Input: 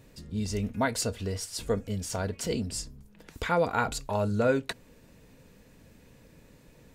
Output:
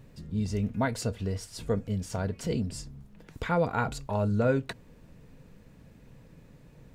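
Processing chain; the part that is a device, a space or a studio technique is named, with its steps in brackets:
car interior (parametric band 140 Hz +7.5 dB 0.97 octaves; high-shelf EQ 3,400 Hz −7 dB; brown noise bed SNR 25 dB)
level −1.5 dB

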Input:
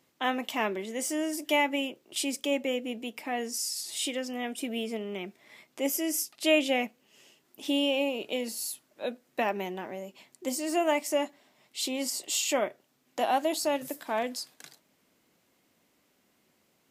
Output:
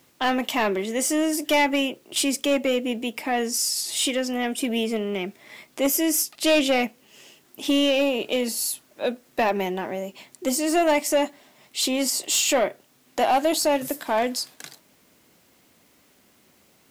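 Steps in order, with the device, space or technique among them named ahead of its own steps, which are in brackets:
open-reel tape (soft clipping −22.5 dBFS, distortion −13 dB; parametric band 75 Hz +5 dB 0.98 octaves; white noise bed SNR 40 dB)
level +9 dB

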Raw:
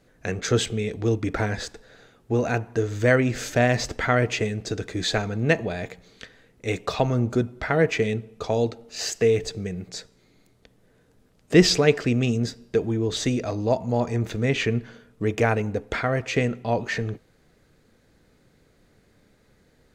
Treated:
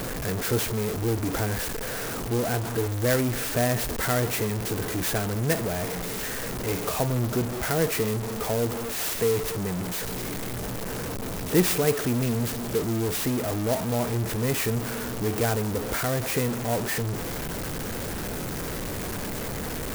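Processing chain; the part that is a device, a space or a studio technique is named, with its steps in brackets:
early CD player with a faulty converter (converter with a step at zero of −18.5 dBFS; converter with an unsteady clock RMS 0.079 ms)
level −7 dB

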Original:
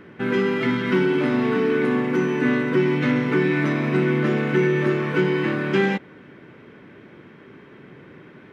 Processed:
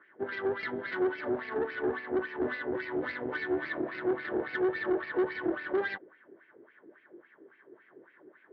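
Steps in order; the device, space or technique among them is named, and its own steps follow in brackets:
wah-wah guitar rig (LFO wah 3.6 Hz 360–2,500 Hz, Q 3.8; tube saturation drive 28 dB, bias 0.75; loudspeaker in its box 99–4,300 Hz, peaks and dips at 110 Hz +3 dB, 160 Hz −5 dB, 340 Hz +7 dB, 630 Hz +3 dB, 1,700 Hz +7 dB, 2,500 Hz −9 dB)

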